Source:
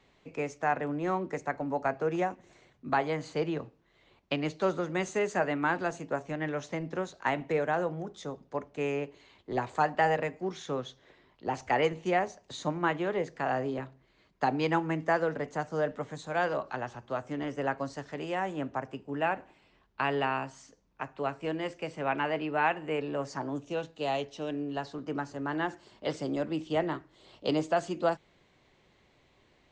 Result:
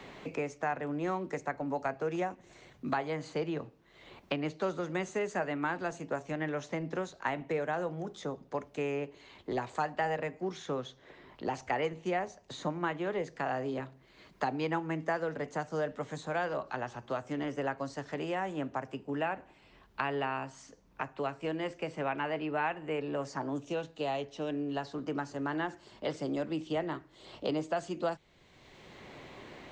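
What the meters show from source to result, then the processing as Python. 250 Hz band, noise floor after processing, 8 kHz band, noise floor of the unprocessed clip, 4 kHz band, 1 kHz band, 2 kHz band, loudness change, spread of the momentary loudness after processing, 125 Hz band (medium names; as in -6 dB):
-2.0 dB, -62 dBFS, -2.5 dB, -66 dBFS, -3.0 dB, -4.0 dB, -4.0 dB, -3.5 dB, 8 LU, -2.5 dB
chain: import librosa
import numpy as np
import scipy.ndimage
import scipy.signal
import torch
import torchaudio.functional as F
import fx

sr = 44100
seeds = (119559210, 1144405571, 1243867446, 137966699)

y = fx.band_squash(x, sr, depth_pct=70)
y = F.gain(torch.from_numpy(y), -3.5).numpy()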